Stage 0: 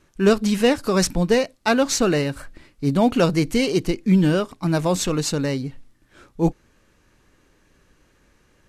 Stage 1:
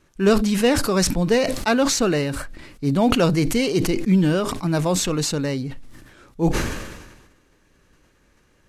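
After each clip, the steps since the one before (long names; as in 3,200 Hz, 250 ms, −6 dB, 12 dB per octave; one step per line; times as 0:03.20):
level that may fall only so fast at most 46 dB per second
level −1 dB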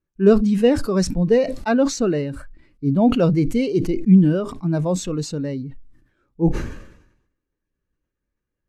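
every bin expanded away from the loudest bin 1.5 to 1
level −2 dB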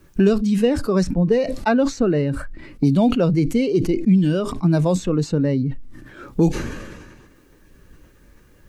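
multiband upward and downward compressor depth 100%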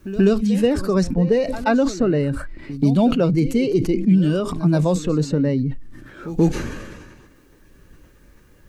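echo ahead of the sound 132 ms −14.5 dB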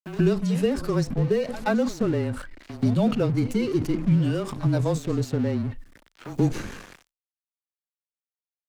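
dead-zone distortion −34.5 dBFS
frequency shifter −25 Hz
one half of a high-frequency compander encoder only
level −4.5 dB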